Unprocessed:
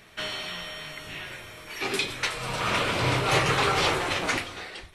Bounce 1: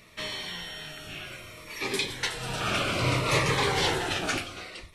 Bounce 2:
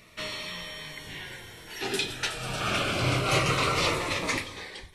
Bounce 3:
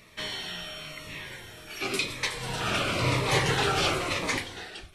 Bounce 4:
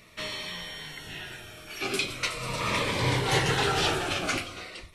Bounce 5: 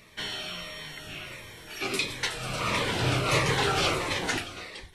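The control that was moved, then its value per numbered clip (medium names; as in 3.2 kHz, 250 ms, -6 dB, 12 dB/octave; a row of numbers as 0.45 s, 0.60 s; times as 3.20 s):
Shepard-style phaser, rate: 0.62 Hz, 0.26 Hz, 0.97 Hz, 0.41 Hz, 1.5 Hz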